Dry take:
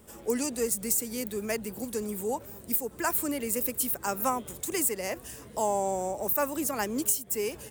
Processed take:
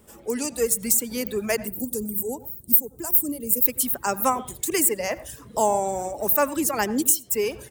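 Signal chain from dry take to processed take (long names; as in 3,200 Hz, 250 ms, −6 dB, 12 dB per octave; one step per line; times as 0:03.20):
reverb reduction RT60 1.4 s
0:01.67–0:03.66: drawn EQ curve 260 Hz 0 dB, 2,000 Hz −21 dB, 15,000 Hz +8 dB
automatic gain control gain up to 7.5 dB
on a send: convolution reverb RT60 0.30 s, pre-delay 77 ms, DRR 17 dB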